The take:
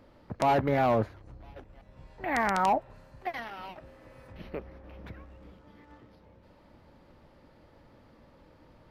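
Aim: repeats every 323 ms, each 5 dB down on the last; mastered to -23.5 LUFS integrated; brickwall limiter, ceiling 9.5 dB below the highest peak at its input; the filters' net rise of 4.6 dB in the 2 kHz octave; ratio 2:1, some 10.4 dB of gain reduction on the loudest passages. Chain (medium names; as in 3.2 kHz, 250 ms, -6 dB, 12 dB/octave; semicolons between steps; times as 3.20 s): peaking EQ 2 kHz +5.5 dB; compression 2:1, threshold -40 dBFS; peak limiter -32 dBFS; feedback delay 323 ms, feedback 56%, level -5 dB; trim +20 dB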